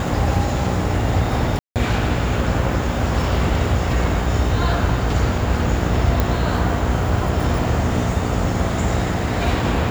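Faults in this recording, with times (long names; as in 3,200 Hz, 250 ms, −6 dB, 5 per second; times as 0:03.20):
mains buzz 60 Hz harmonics 14 −23 dBFS
0:01.59–0:01.76: drop-out 168 ms
0:06.20: click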